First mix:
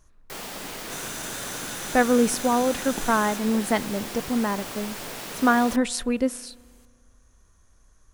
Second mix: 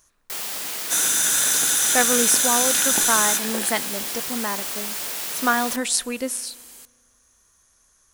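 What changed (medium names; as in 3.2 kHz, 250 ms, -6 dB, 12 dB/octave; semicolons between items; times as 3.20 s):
second sound +9.5 dB; master: add tilt EQ +3 dB/octave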